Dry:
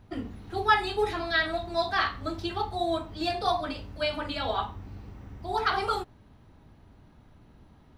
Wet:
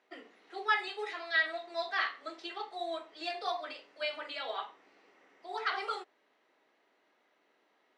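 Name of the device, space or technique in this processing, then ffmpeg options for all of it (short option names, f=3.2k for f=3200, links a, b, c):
phone speaker on a table: -filter_complex "[0:a]highpass=f=400:w=0.5412,highpass=f=400:w=1.3066,equalizer=f=880:t=q:w=4:g=-4,equalizer=f=2k:t=q:w=4:g=8,equalizer=f=2.8k:t=q:w=4:g=3,lowpass=f=8.3k:w=0.5412,lowpass=f=8.3k:w=1.3066,asettb=1/sr,asplit=3[a][b][c];[a]atrim=end=0.884[d];[b]atrim=start=0.88:end=1.36,asetpts=PTS-STARTPTS,afade=t=in:d=0.004:c=qsin,afade=t=out:st=0.476:d=0.004:c=qsin,highpass=f=430:p=1[e];[c]atrim=start=1.356[f];[d][e]acrossfade=d=0.004:c1=hsin:c2=qsin[g];[g][f]acrossfade=d=0.004:c1=qsin:c2=hsin,volume=-7.5dB"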